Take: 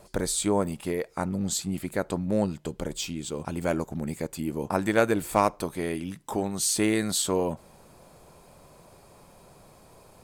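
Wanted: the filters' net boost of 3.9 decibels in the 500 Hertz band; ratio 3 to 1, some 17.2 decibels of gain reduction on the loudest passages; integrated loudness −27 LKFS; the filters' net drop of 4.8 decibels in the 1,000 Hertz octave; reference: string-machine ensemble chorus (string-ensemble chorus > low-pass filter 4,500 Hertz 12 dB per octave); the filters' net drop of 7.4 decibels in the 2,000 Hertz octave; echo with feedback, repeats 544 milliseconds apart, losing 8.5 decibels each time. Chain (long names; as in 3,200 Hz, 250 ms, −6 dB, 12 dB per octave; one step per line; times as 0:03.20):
parametric band 500 Hz +7 dB
parametric band 1,000 Hz −8 dB
parametric band 2,000 Hz −7 dB
downward compressor 3 to 1, threshold −39 dBFS
repeating echo 544 ms, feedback 38%, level −8.5 dB
string-ensemble chorus
low-pass filter 4,500 Hz 12 dB per octave
level +16 dB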